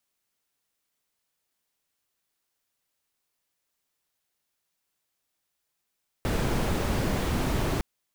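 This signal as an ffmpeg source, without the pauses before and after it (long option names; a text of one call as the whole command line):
ffmpeg -f lavfi -i "anoisesrc=color=brown:amplitude=0.234:duration=1.56:sample_rate=44100:seed=1" out.wav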